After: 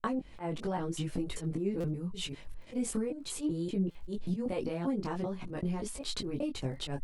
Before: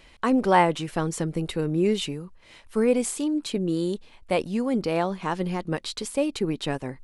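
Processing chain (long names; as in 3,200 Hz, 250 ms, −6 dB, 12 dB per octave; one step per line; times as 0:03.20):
slices reordered back to front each 194 ms, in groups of 2
noise gate with hold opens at −43 dBFS
low-shelf EQ 480 Hz +10 dB
brickwall limiter −13.5 dBFS, peak gain reduction 11 dB
volume swells 132 ms
downward compressor, threshold −27 dBFS, peak gain reduction 10 dB
surface crackle 11 per second −48 dBFS
multi-voice chorus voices 4, 0.49 Hz, delay 19 ms, depth 4.5 ms
buffer that repeats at 0:01.80/0:03.91, samples 256, times 6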